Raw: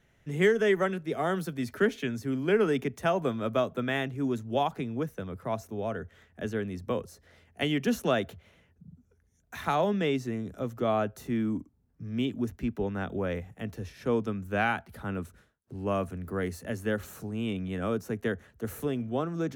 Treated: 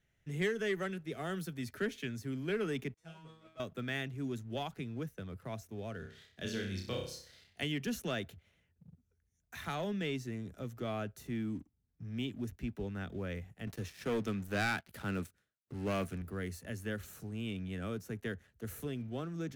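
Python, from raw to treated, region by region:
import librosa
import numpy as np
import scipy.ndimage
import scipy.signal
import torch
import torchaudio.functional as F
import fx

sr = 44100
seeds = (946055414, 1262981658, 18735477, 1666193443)

y = fx.chain(x, sr, fx.lowpass(hz=9000.0, slope=12),
    fx.comb_fb(f0_hz=160.0, decay_s=0.68, harmonics='all', damping=0.0, mix_pct=100), at=(2.94, 3.6))
y = fx.chain(y, sr, fx.peak_eq(hz=4300.0, db=14.5, octaves=1.0),
    fx.room_flutter(wall_m=5.3, rt60_s=0.51), at=(5.99, 7.61))
y = fx.chain(y, sr, fx.highpass(hz=180.0, slope=6),
    fx.leveller(passes=2), at=(13.67, 16.22))
y = fx.dynamic_eq(y, sr, hz=810.0, q=1.1, threshold_db=-40.0, ratio=4.0, max_db=-4)
y = fx.leveller(y, sr, passes=1)
y = fx.graphic_eq(y, sr, hz=(250, 500, 1000), db=(-4, -4, -6))
y = y * librosa.db_to_amplitude(-7.5)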